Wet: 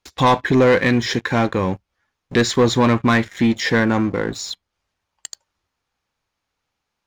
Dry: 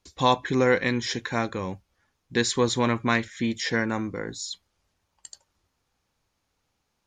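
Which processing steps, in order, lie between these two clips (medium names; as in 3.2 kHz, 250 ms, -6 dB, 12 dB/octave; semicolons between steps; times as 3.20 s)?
waveshaping leveller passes 3; treble shelf 4.5 kHz -11.5 dB; tape noise reduction on one side only encoder only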